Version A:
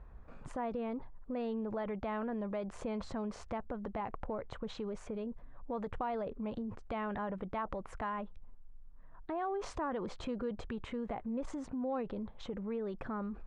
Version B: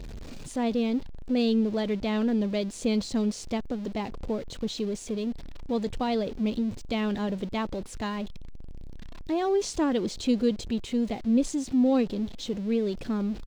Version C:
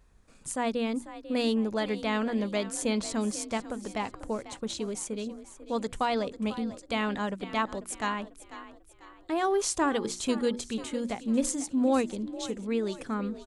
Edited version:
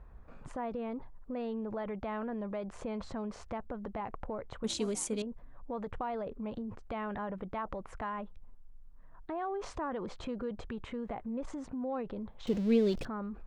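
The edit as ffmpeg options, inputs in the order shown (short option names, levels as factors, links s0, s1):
-filter_complex "[0:a]asplit=3[s0][s1][s2];[s0]atrim=end=4.642[s3];[2:a]atrim=start=4.638:end=5.222[s4];[s1]atrim=start=5.218:end=12.472[s5];[1:a]atrim=start=12.468:end=13.052[s6];[s2]atrim=start=13.048[s7];[s3][s4]acrossfade=d=0.004:c1=hsin:c2=hsin[s8];[s8][s5]acrossfade=d=0.004:c1=hsin:c2=hsin[s9];[s9][s6]acrossfade=d=0.004:c1=hsin:c2=hsin[s10];[s10][s7]acrossfade=d=0.004:c1=hsin:c2=hsin"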